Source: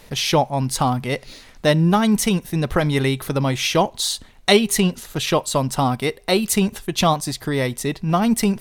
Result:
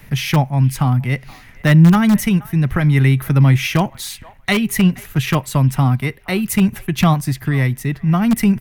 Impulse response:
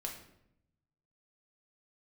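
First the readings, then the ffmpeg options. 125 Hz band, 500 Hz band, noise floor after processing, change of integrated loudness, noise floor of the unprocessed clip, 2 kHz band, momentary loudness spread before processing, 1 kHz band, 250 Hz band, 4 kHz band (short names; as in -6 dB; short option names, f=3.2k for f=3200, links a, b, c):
+9.5 dB, -5.5 dB, -43 dBFS, +4.0 dB, -47 dBFS, +3.5 dB, 7 LU, -2.0 dB, +5.0 dB, -4.5 dB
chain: -filter_complex "[0:a]highshelf=f=9.1k:g=3.5,tremolo=f=0.57:d=0.3,equalizer=f=125:t=o:w=1:g=9,equalizer=f=500:t=o:w=1:g=-10,equalizer=f=1k:t=o:w=1:g=-4,equalizer=f=2k:t=o:w=1:g=5,equalizer=f=4k:t=o:w=1:g=-10,equalizer=f=8k:t=o:w=1:g=-9,acrossover=split=290|450|3300[a][b][c][d];[b]aeval=exprs='(mod(15.8*val(0)+1,2)-1)/15.8':c=same[e];[c]aecho=1:1:474|948:0.1|0.017[f];[a][e][f][d]amix=inputs=4:normalize=0,volume=4.5dB"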